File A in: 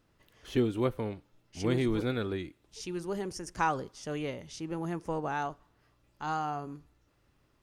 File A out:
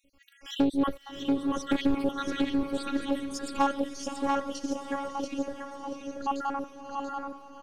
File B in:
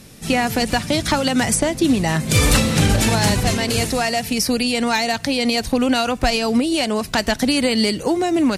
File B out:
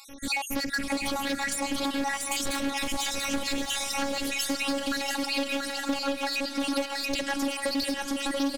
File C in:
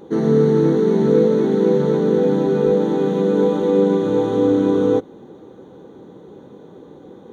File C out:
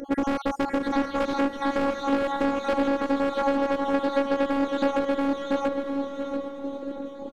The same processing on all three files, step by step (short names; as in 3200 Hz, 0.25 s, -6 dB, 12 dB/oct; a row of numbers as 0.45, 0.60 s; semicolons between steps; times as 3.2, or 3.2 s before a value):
random spectral dropouts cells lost 65%; overloaded stage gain 23 dB; robotiser 278 Hz; feedback echo 0.685 s, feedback 24%, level -5 dB; compressor, threshold -28 dBFS; diffused feedback echo 0.672 s, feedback 41%, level -10 dB; Doppler distortion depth 0.32 ms; normalise peaks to -9 dBFS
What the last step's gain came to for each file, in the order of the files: +10.0, +4.0, +8.5 dB